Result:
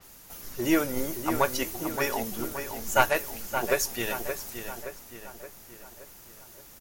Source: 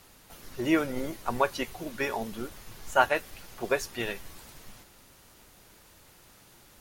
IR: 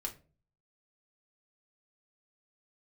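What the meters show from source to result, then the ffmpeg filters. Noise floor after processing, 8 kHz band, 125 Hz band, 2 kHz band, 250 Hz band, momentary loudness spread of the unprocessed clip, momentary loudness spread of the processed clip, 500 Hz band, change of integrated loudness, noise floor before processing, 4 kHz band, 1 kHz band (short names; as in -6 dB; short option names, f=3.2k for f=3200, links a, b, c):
-50 dBFS, +10.0 dB, +2.5 dB, +1.5 dB, +2.0 dB, 21 LU, 21 LU, +1.5 dB, +1.5 dB, -57 dBFS, +3.5 dB, +1.0 dB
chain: -filter_complex "[0:a]aeval=exprs='0.501*(cos(1*acos(clip(val(0)/0.501,-1,1)))-cos(1*PI/2))+0.178*(cos(2*acos(clip(val(0)/0.501,-1,1)))-cos(2*PI/2))':c=same,asplit=2[a][b];[b]adelay=572,lowpass=f=3.2k:p=1,volume=-8dB,asplit=2[c][d];[d]adelay=572,lowpass=f=3.2k:p=1,volume=0.53,asplit=2[e][f];[f]adelay=572,lowpass=f=3.2k:p=1,volume=0.53,asplit=2[g][h];[h]adelay=572,lowpass=f=3.2k:p=1,volume=0.53,asplit=2[i][j];[j]adelay=572,lowpass=f=3.2k:p=1,volume=0.53,asplit=2[k][l];[l]adelay=572,lowpass=f=3.2k:p=1,volume=0.53[m];[a][c][e][g][i][k][m]amix=inputs=7:normalize=0,asplit=2[n][o];[1:a]atrim=start_sample=2205[p];[o][p]afir=irnorm=-1:irlink=0,volume=-15.5dB[q];[n][q]amix=inputs=2:normalize=0,aexciter=amount=2.4:drive=3.3:freq=5.4k,adynamicequalizer=threshold=0.00501:dfrequency=5100:dqfactor=0.7:tfrequency=5100:tqfactor=0.7:attack=5:release=100:ratio=0.375:range=2:mode=boostabove:tftype=highshelf"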